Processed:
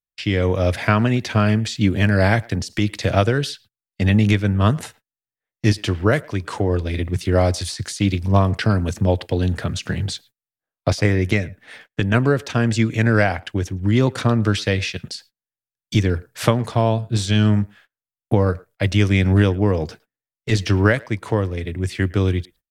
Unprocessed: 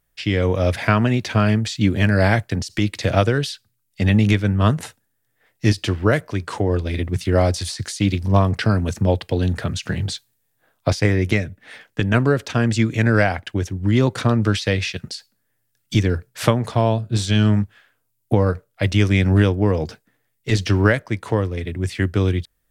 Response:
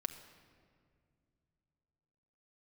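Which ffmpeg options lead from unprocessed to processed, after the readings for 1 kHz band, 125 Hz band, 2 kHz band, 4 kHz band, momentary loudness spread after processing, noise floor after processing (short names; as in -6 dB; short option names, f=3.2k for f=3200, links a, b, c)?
0.0 dB, 0.0 dB, 0.0 dB, 0.0 dB, 9 LU, under -85 dBFS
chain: -filter_complex "[0:a]asplit=2[a][b];[b]adelay=110,highpass=300,lowpass=3.4k,asoftclip=type=hard:threshold=-10dB,volume=-23dB[c];[a][c]amix=inputs=2:normalize=0,agate=range=-28dB:threshold=-45dB:ratio=16:detection=peak"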